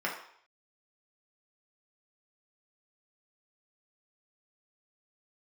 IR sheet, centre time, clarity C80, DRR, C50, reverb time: 30 ms, 9.0 dB, −3.5 dB, 6.0 dB, 0.60 s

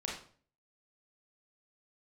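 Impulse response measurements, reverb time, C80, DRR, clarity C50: 0.45 s, 9.0 dB, −3.0 dB, 3.5 dB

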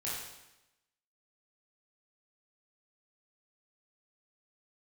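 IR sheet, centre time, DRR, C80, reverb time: 72 ms, −8.0 dB, 3.0 dB, 0.95 s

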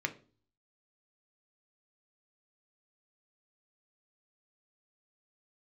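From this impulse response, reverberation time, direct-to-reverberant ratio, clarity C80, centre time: 0.40 s, 6.5 dB, 22.0 dB, 5 ms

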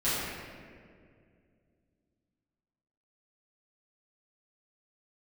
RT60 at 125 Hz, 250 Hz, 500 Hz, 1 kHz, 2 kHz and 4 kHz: 3.1, 3.0, 2.6, 1.8, 1.8, 1.2 seconds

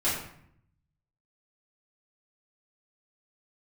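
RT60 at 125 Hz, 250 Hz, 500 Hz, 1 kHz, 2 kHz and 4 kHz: 1.2, 0.95, 0.65, 0.65, 0.65, 0.45 seconds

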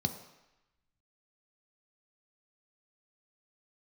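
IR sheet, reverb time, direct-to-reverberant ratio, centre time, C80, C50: 0.95 s, 6.0 dB, 14 ms, 12.0 dB, 10.5 dB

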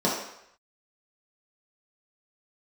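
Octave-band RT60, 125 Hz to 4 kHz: 0.55, 0.55, 0.70, 0.75, 0.80, 0.70 seconds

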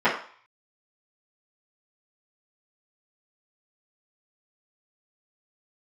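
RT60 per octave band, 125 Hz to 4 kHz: 0.35, 0.35, 0.40, 0.55, 0.50, 0.50 seconds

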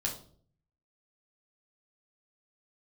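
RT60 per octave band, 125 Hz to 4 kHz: 0.90, 0.70, 0.60, 0.45, 0.35, 0.40 seconds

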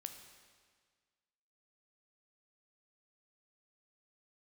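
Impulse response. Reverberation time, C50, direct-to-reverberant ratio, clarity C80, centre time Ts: 1.7 s, 7.5 dB, 6.0 dB, 9.0 dB, 28 ms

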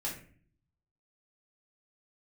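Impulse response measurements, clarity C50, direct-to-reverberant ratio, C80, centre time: 6.5 dB, −5.5 dB, 11.5 dB, 28 ms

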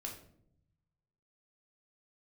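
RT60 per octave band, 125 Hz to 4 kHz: 1.7, 1.1, 0.85, 0.55, 0.45, 0.40 seconds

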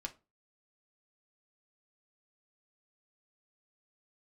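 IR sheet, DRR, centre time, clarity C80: 1.5 dB, 6 ms, 26.0 dB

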